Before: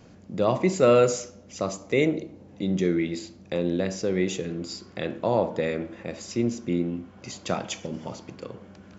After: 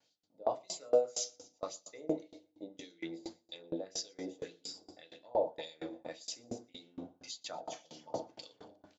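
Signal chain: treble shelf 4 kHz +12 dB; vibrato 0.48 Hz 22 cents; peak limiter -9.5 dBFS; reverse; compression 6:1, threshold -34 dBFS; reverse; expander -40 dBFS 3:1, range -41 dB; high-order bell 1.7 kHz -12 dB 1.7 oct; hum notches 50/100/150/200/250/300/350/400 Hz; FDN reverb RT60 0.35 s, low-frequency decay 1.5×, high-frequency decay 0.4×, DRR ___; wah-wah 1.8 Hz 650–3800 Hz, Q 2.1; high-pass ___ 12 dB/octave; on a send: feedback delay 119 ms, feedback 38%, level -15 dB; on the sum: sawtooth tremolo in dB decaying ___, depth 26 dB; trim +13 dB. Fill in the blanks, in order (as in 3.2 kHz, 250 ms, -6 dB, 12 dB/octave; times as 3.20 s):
2.5 dB, 48 Hz, 4.3 Hz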